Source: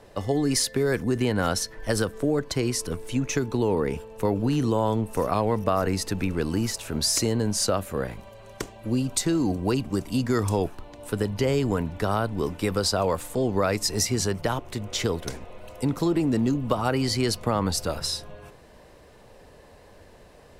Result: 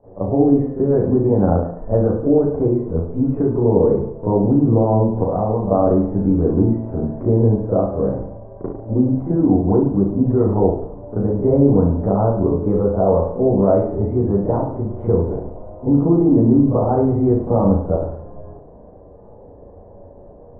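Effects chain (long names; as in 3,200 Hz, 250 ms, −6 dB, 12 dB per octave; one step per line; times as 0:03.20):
inverse Chebyshev low-pass filter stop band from 4,600 Hz, stop band 80 dB
0:04.99–0:05.60: downward compressor 2 to 1, threshold −26 dBFS, peak gain reduction 4.5 dB
convolution reverb RT60 0.70 s, pre-delay 35 ms, DRR −14.5 dB
level −5 dB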